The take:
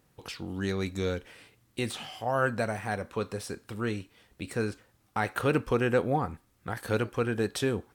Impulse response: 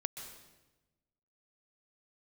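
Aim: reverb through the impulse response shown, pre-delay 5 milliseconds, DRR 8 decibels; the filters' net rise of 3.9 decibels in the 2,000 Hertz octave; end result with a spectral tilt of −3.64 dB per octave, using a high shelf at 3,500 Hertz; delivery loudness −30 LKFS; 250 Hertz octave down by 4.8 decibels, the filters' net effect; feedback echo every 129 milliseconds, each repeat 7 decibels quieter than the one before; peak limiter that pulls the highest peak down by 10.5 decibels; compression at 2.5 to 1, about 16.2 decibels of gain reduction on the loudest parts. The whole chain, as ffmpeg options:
-filter_complex "[0:a]equalizer=frequency=250:width_type=o:gain=-6.5,equalizer=frequency=2000:width_type=o:gain=3.5,highshelf=frequency=3500:gain=7.5,acompressor=threshold=-47dB:ratio=2.5,alimiter=level_in=10.5dB:limit=-24dB:level=0:latency=1,volume=-10.5dB,aecho=1:1:129|258|387|516|645:0.447|0.201|0.0905|0.0407|0.0183,asplit=2[link_01][link_02];[1:a]atrim=start_sample=2205,adelay=5[link_03];[link_02][link_03]afir=irnorm=-1:irlink=0,volume=-8dB[link_04];[link_01][link_04]amix=inputs=2:normalize=0,volume=15.5dB"

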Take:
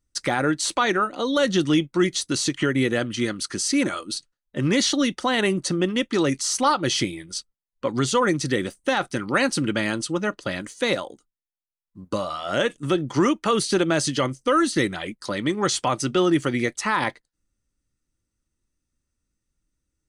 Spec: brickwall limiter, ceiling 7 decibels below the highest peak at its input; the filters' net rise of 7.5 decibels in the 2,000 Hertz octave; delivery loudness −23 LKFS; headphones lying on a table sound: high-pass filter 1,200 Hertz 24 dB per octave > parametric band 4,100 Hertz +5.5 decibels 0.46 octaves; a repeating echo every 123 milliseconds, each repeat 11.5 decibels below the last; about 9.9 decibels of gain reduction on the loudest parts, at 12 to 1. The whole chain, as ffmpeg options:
ffmpeg -i in.wav -af "equalizer=frequency=2000:width_type=o:gain=9,acompressor=threshold=-23dB:ratio=12,alimiter=limit=-18.5dB:level=0:latency=1,highpass=frequency=1200:width=0.5412,highpass=frequency=1200:width=1.3066,equalizer=frequency=4100:width_type=o:width=0.46:gain=5.5,aecho=1:1:123|246|369:0.266|0.0718|0.0194,volume=7dB" out.wav

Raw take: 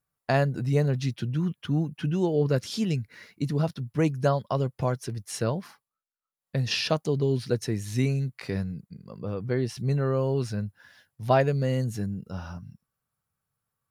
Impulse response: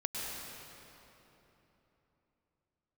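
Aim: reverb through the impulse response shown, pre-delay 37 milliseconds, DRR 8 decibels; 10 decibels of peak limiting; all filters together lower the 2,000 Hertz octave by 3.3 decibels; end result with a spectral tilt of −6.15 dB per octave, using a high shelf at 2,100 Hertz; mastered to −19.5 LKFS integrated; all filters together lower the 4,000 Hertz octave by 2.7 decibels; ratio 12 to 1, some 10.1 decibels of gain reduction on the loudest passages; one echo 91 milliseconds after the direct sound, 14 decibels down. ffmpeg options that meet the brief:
-filter_complex "[0:a]equalizer=frequency=2000:width_type=o:gain=-5,highshelf=frequency=2100:gain=4,equalizer=frequency=4000:width_type=o:gain=-6.5,acompressor=threshold=-27dB:ratio=12,alimiter=level_in=1dB:limit=-24dB:level=0:latency=1,volume=-1dB,aecho=1:1:91:0.2,asplit=2[link_01][link_02];[1:a]atrim=start_sample=2205,adelay=37[link_03];[link_02][link_03]afir=irnorm=-1:irlink=0,volume=-12dB[link_04];[link_01][link_04]amix=inputs=2:normalize=0,volume=14.5dB"

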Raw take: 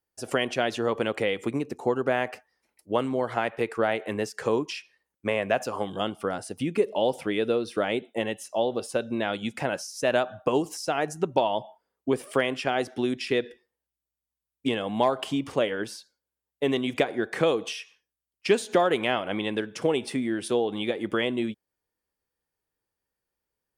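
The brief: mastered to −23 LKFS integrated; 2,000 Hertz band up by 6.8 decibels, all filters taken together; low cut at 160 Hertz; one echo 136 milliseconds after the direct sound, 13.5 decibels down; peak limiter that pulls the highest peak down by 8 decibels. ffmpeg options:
ffmpeg -i in.wav -af "highpass=160,equalizer=frequency=2000:width_type=o:gain=8.5,alimiter=limit=-13dB:level=0:latency=1,aecho=1:1:136:0.211,volume=4.5dB" out.wav

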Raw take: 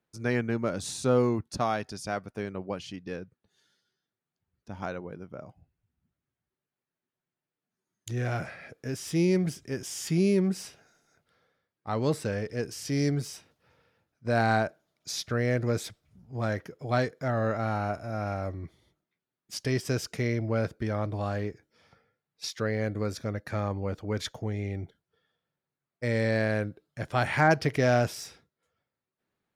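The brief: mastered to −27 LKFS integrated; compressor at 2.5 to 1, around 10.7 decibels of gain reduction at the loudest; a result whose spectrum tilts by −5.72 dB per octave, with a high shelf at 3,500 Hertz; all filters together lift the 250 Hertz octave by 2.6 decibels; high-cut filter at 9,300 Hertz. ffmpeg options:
ffmpeg -i in.wav -af "lowpass=9300,equalizer=frequency=250:width_type=o:gain=3.5,highshelf=frequency=3500:gain=-3,acompressor=threshold=-35dB:ratio=2.5,volume=10.5dB" out.wav

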